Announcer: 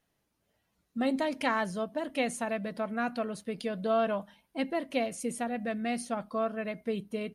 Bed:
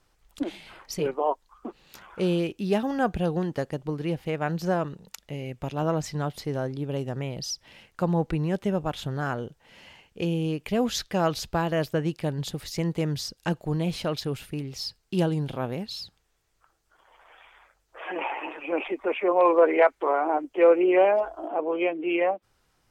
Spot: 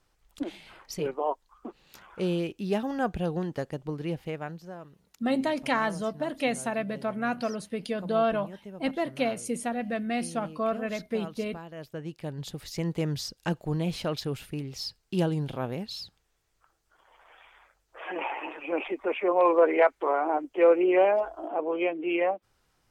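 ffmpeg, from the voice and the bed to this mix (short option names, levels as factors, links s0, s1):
-filter_complex "[0:a]adelay=4250,volume=1.33[s0];[1:a]volume=3.76,afade=t=out:st=4.21:d=0.42:silence=0.211349,afade=t=in:st=11.74:d=1.27:silence=0.177828[s1];[s0][s1]amix=inputs=2:normalize=0"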